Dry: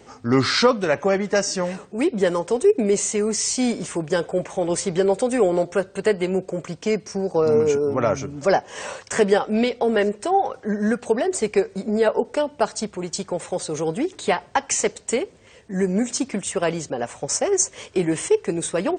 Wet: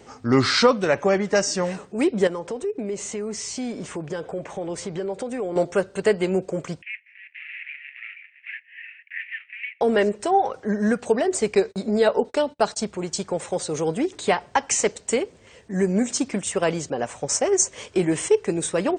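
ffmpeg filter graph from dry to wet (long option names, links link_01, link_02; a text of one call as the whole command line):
ffmpeg -i in.wav -filter_complex "[0:a]asettb=1/sr,asplit=3[link_01][link_02][link_03];[link_01]atrim=end=2.274[link_04];[link_02]atrim=start=2.27:end=5.56,asetpts=PTS-STARTPTS,afade=type=in:duration=0.004:curve=qsin,afade=type=out:start_time=3.286:duration=0.004:curve=qsin,lowpass=frequency=3500:poles=1,acompressor=threshold=-29dB:ratio=2.5:attack=3.2:release=140:knee=1:detection=peak[link_05];[link_03]atrim=start=5.556[link_06];[link_04][link_05]acrossfade=duration=0.004:curve1=hsin:curve2=qsin[link_07];[link_07][link_06]acrossfade=duration=0.004:curve1=qsin:curve2=hsin,asettb=1/sr,asplit=3[link_08][link_09][link_10];[link_08]atrim=end=6.824[link_11];[link_09]atrim=start=6.82:end=9.81,asetpts=PTS-STARTPTS,afade=type=in:duration=0.004:curve=qsin,afade=type=out:start_time=2.986:duration=0.004:curve=qsin,acrusher=bits=2:mode=log:mix=0:aa=0.000001,asuperpass=centerf=2200:order=8:qfactor=2.4[link_12];[link_10]atrim=start=9.806[link_13];[link_11][link_12]acrossfade=duration=0.004:curve1=hsin:curve2=qsin[link_14];[link_14][link_13]acrossfade=duration=0.004:curve1=qsin:curve2=hsin,asettb=1/sr,asplit=3[link_15][link_16][link_17];[link_15]atrim=end=11.554[link_18];[link_16]atrim=start=11.55:end=12.77,asetpts=PTS-STARTPTS,afade=type=in:duration=0.004:curve=qsin,afade=type=out:start_time=1.216:duration=0.004:curve=qsin,agate=range=-31dB:threshold=-41dB:ratio=16:release=100:detection=peak,equalizer=frequency=3900:width_type=o:width=0.33:gain=8[link_19];[link_17]atrim=start=12.766[link_20];[link_18][link_19]acrossfade=duration=0.004:curve1=hsin:curve2=qsin[link_21];[link_21][link_20]acrossfade=duration=0.004:curve1=qsin:curve2=hsin" out.wav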